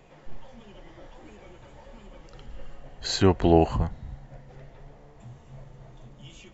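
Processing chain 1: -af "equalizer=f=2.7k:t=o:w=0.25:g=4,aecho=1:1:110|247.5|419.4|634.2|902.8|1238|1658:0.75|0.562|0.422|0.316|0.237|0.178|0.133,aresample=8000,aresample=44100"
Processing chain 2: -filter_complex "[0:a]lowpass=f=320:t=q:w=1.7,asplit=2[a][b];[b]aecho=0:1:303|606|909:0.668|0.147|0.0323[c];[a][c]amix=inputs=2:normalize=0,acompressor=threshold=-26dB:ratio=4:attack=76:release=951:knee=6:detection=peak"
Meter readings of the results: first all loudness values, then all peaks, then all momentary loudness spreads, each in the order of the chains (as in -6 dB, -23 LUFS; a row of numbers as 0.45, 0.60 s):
-22.5, -31.0 LUFS; -4.0, -12.0 dBFS; 21, 21 LU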